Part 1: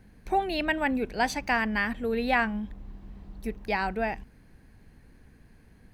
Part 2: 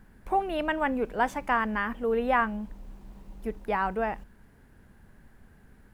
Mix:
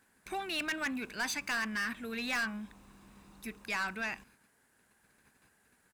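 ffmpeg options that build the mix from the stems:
ffmpeg -i stem1.wav -i stem2.wav -filter_complex "[0:a]aecho=1:1:0.8:0.47,volume=1.5dB[link_01];[1:a]equalizer=frequency=8400:width_type=o:width=1.1:gain=10.5,volume=-5dB,asplit=2[link_02][link_03];[link_03]apad=whole_len=261599[link_04];[link_01][link_04]sidechaingate=range=-33dB:threshold=-56dB:ratio=16:detection=peak[link_05];[link_05][link_02]amix=inputs=2:normalize=0,highpass=frequency=980:poles=1,asoftclip=type=tanh:threshold=-29.5dB" out.wav

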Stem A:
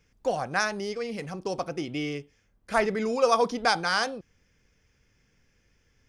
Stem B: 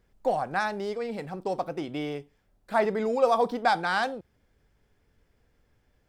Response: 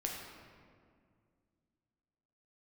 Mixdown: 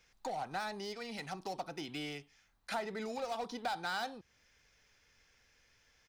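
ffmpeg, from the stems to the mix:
-filter_complex "[0:a]highpass=frequency=600:width=0.5412,highpass=frequency=600:width=1.3066,acompressor=threshold=-40dB:ratio=1.5,asoftclip=type=hard:threshold=-35dB,volume=1.5dB[link_01];[1:a]acompressor=threshold=-25dB:ratio=6,adelay=2,volume=-9.5dB,asplit=2[link_02][link_03];[link_03]apad=whole_len=268322[link_04];[link_01][link_04]sidechaincompress=threshold=-41dB:ratio=8:attack=5.3:release=547[link_05];[link_05][link_02]amix=inputs=2:normalize=0,equalizer=frequency=4000:width=4.9:gain=8"

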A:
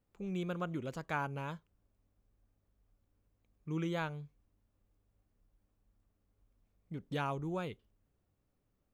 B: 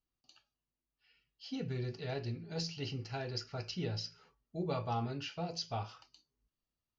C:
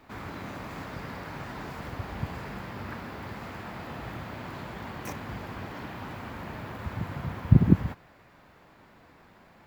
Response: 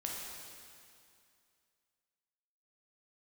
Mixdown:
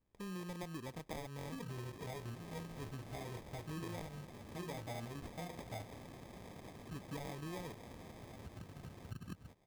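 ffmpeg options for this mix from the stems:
-filter_complex "[0:a]volume=-2.5dB[link_01];[1:a]lowpass=frequency=4100:width=0.5412,lowpass=frequency=4100:width=1.3066,volume=-3.5dB[link_02];[2:a]acompressor=threshold=-43dB:ratio=2.5,adelay=1600,volume=-8.5dB[link_03];[link_01][link_02][link_03]amix=inputs=3:normalize=0,acrusher=samples=31:mix=1:aa=0.000001,acompressor=threshold=-42dB:ratio=4"

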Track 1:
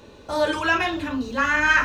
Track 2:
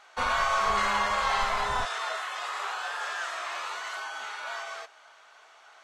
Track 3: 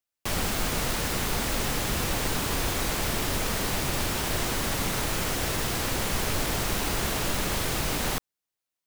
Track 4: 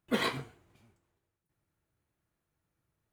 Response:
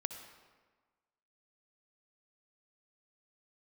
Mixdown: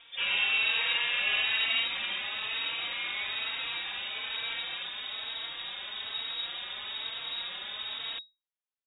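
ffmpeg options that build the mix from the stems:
-filter_complex "[0:a]acompressor=mode=upward:threshold=-29dB:ratio=2.5,volume=-17.5dB[link_01];[1:a]volume=0dB[link_02];[2:a]volume=-6.5dB[link_03];[3:a]volume=-14.5dB[link_04];[link_01][link_02][link_03][link_04]amix=inputs=4:normalize=0,lowpass=frequency=3200:width_type=q:width=0.5098,lowpass=frequency=3200:width_type=q:width=0.6013,lowpass=frequency=3200:width_type=q:width=0.9,lowpass=frequency=3200:width_type=q:width=2.563,afreqshift=-3800,asplit=2[link_05][link_06];[link_06]adelay=3.9,afreqshift=1.1[link_07];[link_05][link_07]amix=inputs=2:normalize=1"

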